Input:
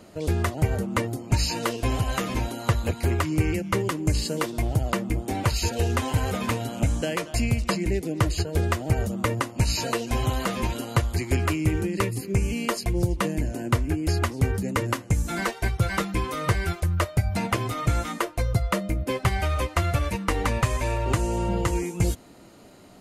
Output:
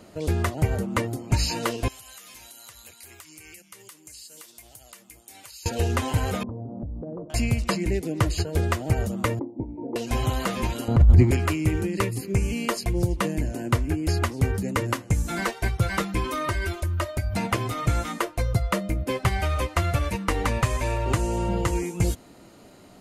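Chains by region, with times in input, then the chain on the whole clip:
1.88–5.66 pre-emphasis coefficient 0.97 + compressor, threshold -41 dBFS
6.43–7.3 Gaussian blur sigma 13 samples + compressor, threshold -30 dBFS
9.39–9.96 vocal tract filter u + bell 440 Hz +10 dB 1.7 oct
10.88–11.31 tilt -4.5 dB/oct + negative-ratio compressor -12 dBFS
16.24–17.34 comb 3.2 ms, depth 78% + compressor 2:1, threshold -25 dBFS
whole clip: dry

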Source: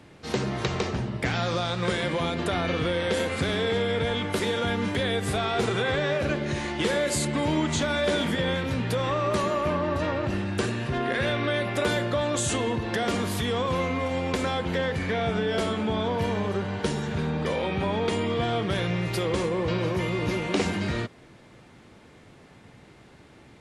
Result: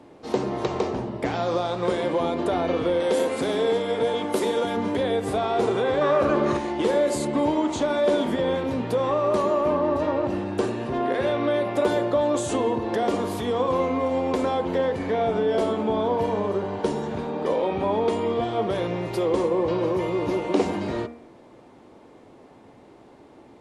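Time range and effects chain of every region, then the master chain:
3–4.77 HPF 140 Hz + high shelf 6800 Hz +11.5 dB
6.01–6.57 bell 1200 Hz +14 dB 0.41 oct + fast leveller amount 70%
whole clip: band shelf 510 Hz +11 dB 2.5 oct; de-hum 78.51 Hz, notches 36; gain -5.5 dB

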